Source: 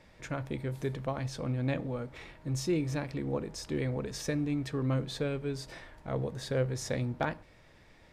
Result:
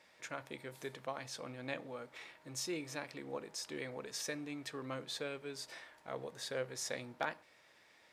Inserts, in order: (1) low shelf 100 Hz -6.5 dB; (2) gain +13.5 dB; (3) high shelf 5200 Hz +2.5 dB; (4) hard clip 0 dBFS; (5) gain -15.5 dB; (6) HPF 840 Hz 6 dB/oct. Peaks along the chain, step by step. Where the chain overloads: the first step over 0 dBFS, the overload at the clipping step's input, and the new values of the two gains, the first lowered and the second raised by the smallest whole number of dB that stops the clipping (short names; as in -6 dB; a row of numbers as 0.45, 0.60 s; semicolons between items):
-17.0, -3.5, -3.0, -3.0, -18.5, -19.0 dBFS; no overload